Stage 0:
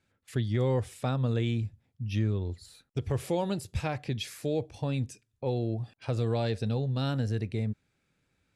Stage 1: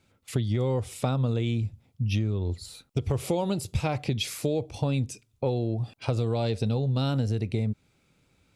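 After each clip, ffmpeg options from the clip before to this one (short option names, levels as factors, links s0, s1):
-af "equalizer=f=1700:t=o:w=0.29:g=-10.5,acompressor=threshold=0.0251:ratio=6,volume=2.82"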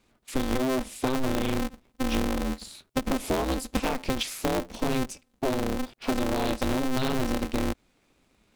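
-af "aeval=exprs='val(0)*sgn(sin(2*PI*130*n/s))':c=same"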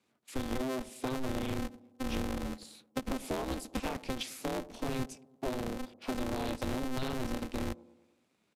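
-filter_complex "[0:a]acrossover=split=100|950|2100[s0][s1][s2][s3];[s0]acrusher=bits=6:dc=4:mix=0:aa=0.000001[s4];[s1]aecho=1:1:106|212|318|424|530:0.141|0.0777|0.0427|0.0235|0.0129[s5];[s4][s5][s2][s3]amix=inputs=4:normalize=0,aresample=32000,aresample=44100,volume=0.376"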